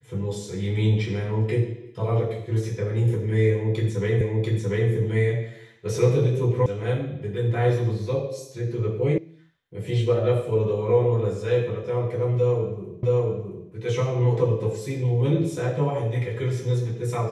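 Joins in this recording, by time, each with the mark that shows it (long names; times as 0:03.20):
0:04.21: the same again, the last 0.69 s
0:06.66: cut off before it has died away
0:09.18: cut off before it has died away
0:13.03: the same again, the last 0.67 s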